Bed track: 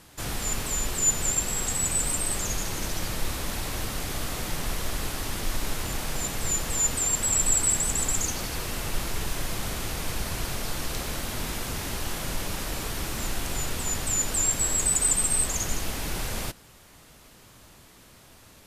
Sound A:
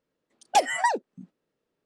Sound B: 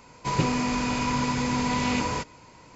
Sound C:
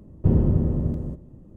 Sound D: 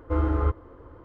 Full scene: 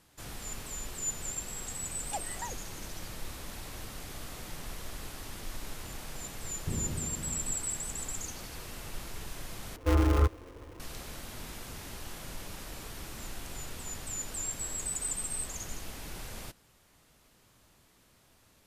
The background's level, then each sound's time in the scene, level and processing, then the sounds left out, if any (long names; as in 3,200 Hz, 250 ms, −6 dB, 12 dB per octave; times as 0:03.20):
bed track −11.5 dB
0:01.58: mix in A −18 dB + adaptive Wiener filter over 9 samples
0:06.42: mix in C −17 dB
0:09.76: overwrite with D −0.5 dB + gap after every zero crossing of 0.29 ms
not used: B